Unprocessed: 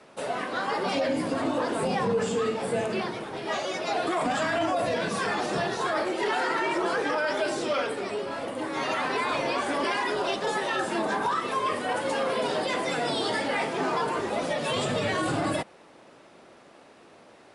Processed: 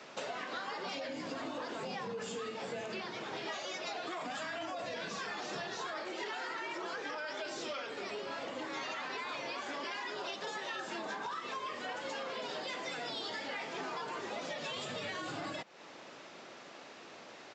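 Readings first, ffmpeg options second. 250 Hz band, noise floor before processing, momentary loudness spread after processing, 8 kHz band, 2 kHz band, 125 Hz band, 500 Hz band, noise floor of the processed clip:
-15.0 dB, -53 dBFS, 4 LU, -10.0 dB, -10.0 dB, -16.5 dB, -14.0 dB, -52 dBFS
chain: -af "highpass=110,tiltshelf=f=1.3k:g=-4.5,acompressor=threshold=-40dB:ratio=10,aresample=16000,aresample=44100,volume=2.5dB"

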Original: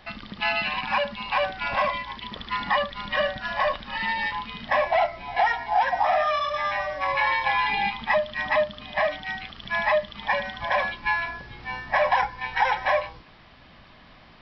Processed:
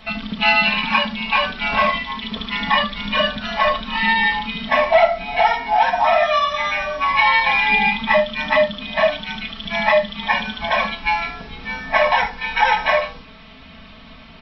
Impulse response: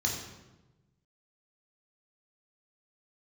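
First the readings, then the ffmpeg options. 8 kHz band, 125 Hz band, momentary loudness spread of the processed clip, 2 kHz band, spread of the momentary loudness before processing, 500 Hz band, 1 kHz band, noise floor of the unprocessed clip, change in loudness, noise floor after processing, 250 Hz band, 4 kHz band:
n/a, +7.5 dB, 9 LU, +7.0 dB, 9 LU, +6.5 dB, +6.0 dB, -51 dBFS, +7.0 dB, -42 dBFS, +13.0 dB, +10.0 dB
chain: -filter_complex "[0:a]aecho=1:1:4.5:0.94,asplit=2[a][b];[1:a]atrim=start_sample=2205,atrim=end_sample=3969[c];[b][c]afir=irnorm=-1:irlink=0,volume=-11dB[d];[a][d]amix=inputs=2:normalize=0,volume=5.5dB"

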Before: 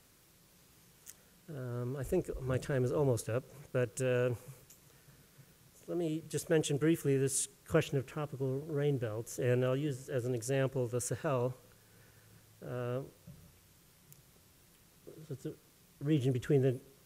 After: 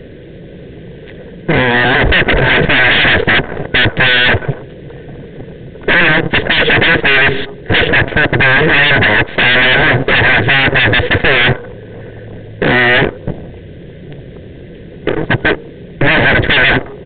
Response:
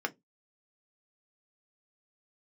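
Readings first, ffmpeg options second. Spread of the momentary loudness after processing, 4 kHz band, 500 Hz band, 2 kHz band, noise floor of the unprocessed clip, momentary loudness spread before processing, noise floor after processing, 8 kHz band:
10 LU, +36.5 dB, +18.5 dB, +39.0 dB, -64 dBFS, 14 LU, -32 dBFS, under -40 dB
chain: -af "apsyclip=30dB,lowshelf=f=650:t=q:w=3:g=10,acontrast=59,aeval=exprs='1*(cos(1*acos(clip(val(0)/1,-1,1)))-cos(1*PI/2))+0.224*(cos(2*acos(clip(val(0)/1,-1,1)))-cos(2*PI/2))+0.501*(cos(3*acos(clip(val(0)/1,-1,1)))-cos(3*PI/2))':c=same,superequalizer=9b=0.562:10b=0.447:11b=2,aresample=8000,aeval=exprs='3.16*sin(PI/2*1.78*val(0)/3.16)':c=same,aresample=44100,volume=-14dB"

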